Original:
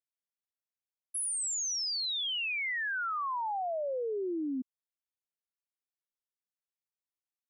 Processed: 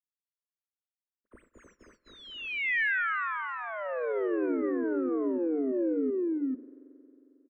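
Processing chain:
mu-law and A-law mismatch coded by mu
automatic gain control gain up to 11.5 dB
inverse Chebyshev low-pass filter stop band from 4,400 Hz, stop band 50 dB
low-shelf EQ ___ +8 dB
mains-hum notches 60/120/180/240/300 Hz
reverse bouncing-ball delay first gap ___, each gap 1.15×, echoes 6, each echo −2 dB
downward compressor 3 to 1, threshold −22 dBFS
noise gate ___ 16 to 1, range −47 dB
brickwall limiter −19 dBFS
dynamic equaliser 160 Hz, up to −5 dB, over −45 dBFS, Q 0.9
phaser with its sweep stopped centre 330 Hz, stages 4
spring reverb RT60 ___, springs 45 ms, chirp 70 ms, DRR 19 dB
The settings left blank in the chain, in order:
470 Hz, 220 ms, −54 dBFS, 3.3 s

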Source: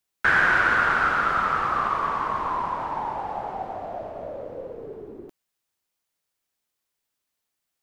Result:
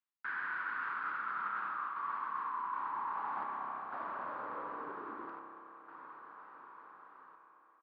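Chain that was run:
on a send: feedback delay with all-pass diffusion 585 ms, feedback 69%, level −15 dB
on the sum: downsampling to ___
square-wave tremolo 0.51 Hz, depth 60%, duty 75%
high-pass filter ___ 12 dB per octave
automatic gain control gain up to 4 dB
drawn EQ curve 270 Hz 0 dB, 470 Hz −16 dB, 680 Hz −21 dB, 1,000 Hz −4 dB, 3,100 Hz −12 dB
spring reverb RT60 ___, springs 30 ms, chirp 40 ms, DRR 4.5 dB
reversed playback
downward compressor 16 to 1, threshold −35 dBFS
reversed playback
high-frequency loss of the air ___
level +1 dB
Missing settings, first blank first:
11,025 Hz, 530 Hz, 2.9 s, 150 metres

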